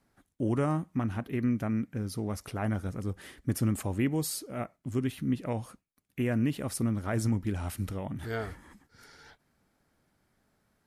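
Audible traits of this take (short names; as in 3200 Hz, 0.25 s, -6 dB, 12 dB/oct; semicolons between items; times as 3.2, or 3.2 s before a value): noise floor -76 dBFS; spectral tilt -7.0 dB/oct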